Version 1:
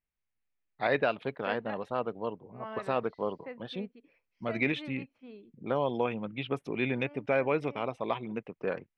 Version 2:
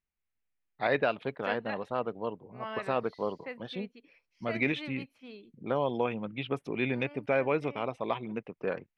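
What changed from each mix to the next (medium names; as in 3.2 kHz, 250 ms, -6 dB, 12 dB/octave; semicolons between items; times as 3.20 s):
second voice: remove low-pass 1.1 kHz 6 dB/octave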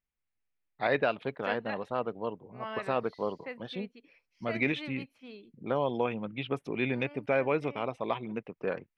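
no change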